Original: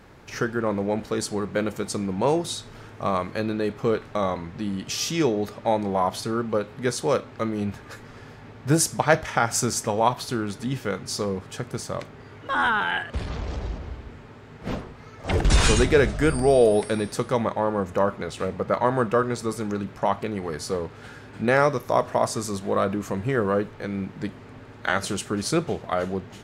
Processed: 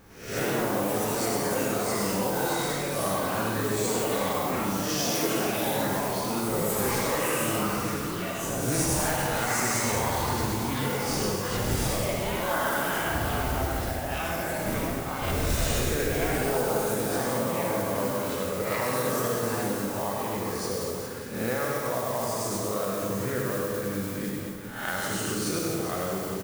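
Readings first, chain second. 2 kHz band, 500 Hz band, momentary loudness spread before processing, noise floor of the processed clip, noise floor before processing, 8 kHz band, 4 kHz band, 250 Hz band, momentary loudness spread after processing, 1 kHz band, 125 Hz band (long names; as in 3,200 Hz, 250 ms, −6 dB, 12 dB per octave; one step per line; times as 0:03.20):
−2.0 dB, −4.0 dB, 14 LU, −33 dBFS, −45 dBFS, +1.5 dB, −0.5 dB, −3.0 dB, 5 LU, −3.0 dB, −2.5 dB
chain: peak hold with a rise ahead of every peak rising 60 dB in 0.59 s
reverb whose tail is shaped and stops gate 220 ms flat, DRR −0.5 dB
noise that follows the level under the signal 13 dB
on a send: reverse bouncing-ball delay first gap 100 ms, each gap 1.3×, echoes 5
on the sum: downward compressor 3 to 1, threshold −20 dBFS, peak gain reduction 10 dB
high-shelf EQ 6,500 Hz +6.5 dB
delay with pitch and tempo change per echo 105 ms, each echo +5 semitones, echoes 3
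low-shelf EQ 380 Hz +4 dB
level −9 dB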